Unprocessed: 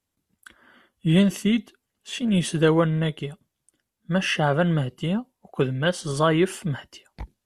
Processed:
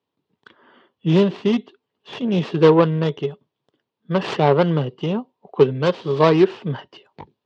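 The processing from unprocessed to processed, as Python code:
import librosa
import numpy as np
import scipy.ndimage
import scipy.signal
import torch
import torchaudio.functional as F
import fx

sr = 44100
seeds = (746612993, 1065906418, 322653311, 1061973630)

y = fx.tracing_dist(x, sr, depth_ms=0.47)
y = fx.cabinet(y, sr, low_hz=120.0, low_slope=24, high_hz=4000.0, hz=(200.0, 420.0, 970.0, 1500.0, 2100.0), db=(-4, 9, 6, -5, -5))
y = y * 10.0 ** (3.0 / 20.0)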